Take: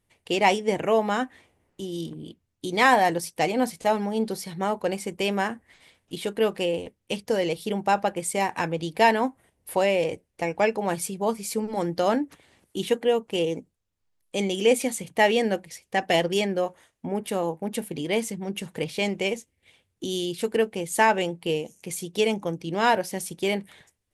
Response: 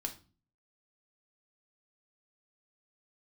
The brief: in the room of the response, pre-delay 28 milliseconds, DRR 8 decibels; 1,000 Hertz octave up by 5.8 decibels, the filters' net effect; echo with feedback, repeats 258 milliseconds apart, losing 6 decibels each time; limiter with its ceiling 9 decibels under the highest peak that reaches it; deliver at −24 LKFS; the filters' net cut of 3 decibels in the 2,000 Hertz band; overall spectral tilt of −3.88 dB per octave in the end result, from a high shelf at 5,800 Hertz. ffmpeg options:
-filter_complex "[0:a]equalizer=frequency=1000:width_type=o:gain=8.5,equalizer=frequency=2000:width_type=o:gain=-7,highshelf=frequency=5800:gain=5.5,alimiter=limit=-12dB:level=0:latency=1,aecho=1:1:258|516|774|1032|1290|1548:0.501|0.251|0.125|0.0626|0.0313|0.0157,asplit=2[link_01][link_02];[1:a]atrim=start_sample=2205,adelay=28[link_03];[link_02][link_03]afir=irnorm=-1:irlink=0,volume=-7.5dB[link_04];[link_01][link_04]amix=inputs=2:normalize=0"

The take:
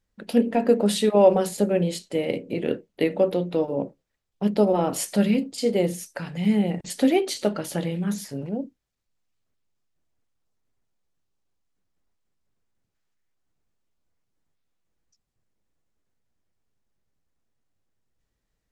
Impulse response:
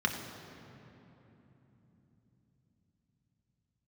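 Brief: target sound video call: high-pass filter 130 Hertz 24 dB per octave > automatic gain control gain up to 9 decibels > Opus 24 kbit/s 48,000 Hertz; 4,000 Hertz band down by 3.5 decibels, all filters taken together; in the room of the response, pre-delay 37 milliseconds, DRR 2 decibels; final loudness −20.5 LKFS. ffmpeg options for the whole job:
-filter_complex "[0:a]equalizer=frequency=4000:width_type=o:gain=-4.5,asplit=2[link_01][link_02];[1:a]atrim=start_sample=2205,adelay=37[link_03];[link_02][link_03]afir=irnorm=-1:irlink=0,volume=-10.5dB[link_04];[link_01][link_04]amix=inputs=2:normalize=0,highpass=frequency=130:width=0.5412,highpass=frequency=130:width=1.3066,dynaudnorm=maxgain=9dB,volume=0.5dB" -ar 48000 -c:a libopus -b:a 24k

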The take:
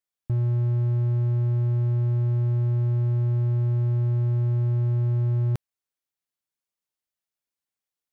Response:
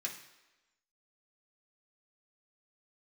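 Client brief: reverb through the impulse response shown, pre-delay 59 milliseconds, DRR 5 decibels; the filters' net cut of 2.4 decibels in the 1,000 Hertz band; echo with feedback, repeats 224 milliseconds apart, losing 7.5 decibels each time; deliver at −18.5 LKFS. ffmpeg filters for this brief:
-filter_complex "[0:a]equalizer=frequency=1000:width_type=o:gain=-3,aecho=1:1:224|448|672|896|1120:0.422|0.177|0.0744|0.0312|0.0131,asplit=2[link_01][link_02];[1:a]atrim=start_sample=2205,adelay=59[link_03];[link_02][link_03]afir=irnorm=-1:irlink=0,volume=-5.5dB[link_04];[link_01][link_04]amix=inputs=2:normalize=0,volume=-1dB"

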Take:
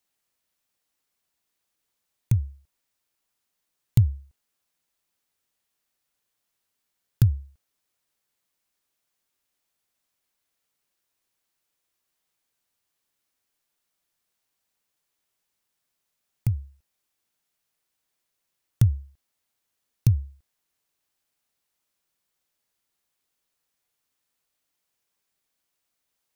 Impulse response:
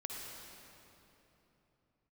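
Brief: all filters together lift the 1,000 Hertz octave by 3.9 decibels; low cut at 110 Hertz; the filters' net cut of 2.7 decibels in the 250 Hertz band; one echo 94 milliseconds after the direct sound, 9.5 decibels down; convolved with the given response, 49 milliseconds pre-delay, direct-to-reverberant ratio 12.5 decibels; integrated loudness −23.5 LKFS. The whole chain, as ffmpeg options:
-filter_complex "[0:a]highpass=110,equalizer=frequency=250:width_type=o:gain=-4,equalizer=frequency=1000:width_type=o:gain=5.5,aecho=1:1:94:0.335,asplit=2[link_01][link_02];[1:a]atrim=start_sample=2205,adelay=49[link_03];[link_02][link_03]afir=irnorm=-1:irlink=0,volume=-12.5dB[link_04];[link_01][link_04]amix=inputs=2:normalize=0,volume=7.5dB"

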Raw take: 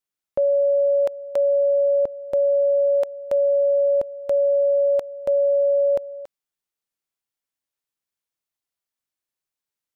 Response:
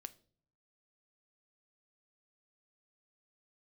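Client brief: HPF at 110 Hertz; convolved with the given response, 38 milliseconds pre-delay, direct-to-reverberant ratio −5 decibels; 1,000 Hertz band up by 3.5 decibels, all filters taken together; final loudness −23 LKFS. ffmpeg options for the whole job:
-filter_complex "[0:a]highpass=110,equalizer=frequency=1000:width_type=o:gain=5,asplit=2[link_01][link_02];[1:a]atrim=start_sample=2205,adelay=38[link_03];[link_02][link_03]afir=irnorm=-1:irlink=0,volume=10.5dB[link_04];[link_01][link_04]amix=inputs=2:normalize=0,volume=-5dB"

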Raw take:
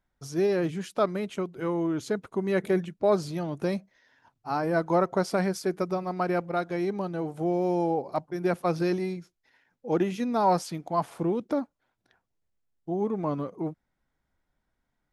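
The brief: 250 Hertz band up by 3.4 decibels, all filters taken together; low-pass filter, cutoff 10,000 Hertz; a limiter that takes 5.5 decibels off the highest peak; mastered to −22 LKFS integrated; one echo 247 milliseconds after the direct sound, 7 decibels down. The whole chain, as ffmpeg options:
ffmpeg -i in.wav -af "lowpass=10000,equalizer=frequency=250:width_type=o:gain=5.5,alimiter=limit=-15.5dB:level=0:latency=1,aecho=1:1:247:0.447,volume=5dB" out.wav

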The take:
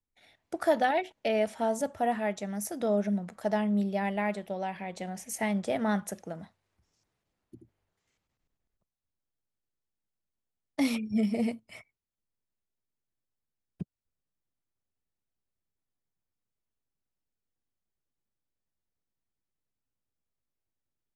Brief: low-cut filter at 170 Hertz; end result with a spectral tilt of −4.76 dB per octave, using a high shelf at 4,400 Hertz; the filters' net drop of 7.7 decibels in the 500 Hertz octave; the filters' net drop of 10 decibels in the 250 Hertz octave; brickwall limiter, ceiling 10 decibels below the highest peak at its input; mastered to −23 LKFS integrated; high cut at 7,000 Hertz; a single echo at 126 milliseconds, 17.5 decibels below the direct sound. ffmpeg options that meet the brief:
ffmpeg -i in.wav -af "highpass=170,lowpass=7000,equalizer=frequency=250:width_type=o:gain=-9,equalizer=frequency=500:width_type=o:gain=-9,highshelf=frequency=4400:gain=-6,alimiter=level_in=3dB:limit=-24dB:level=0:latency=1,volume=-3dB,aecho=1:1:126:0.133,volume=16dB" out.wav

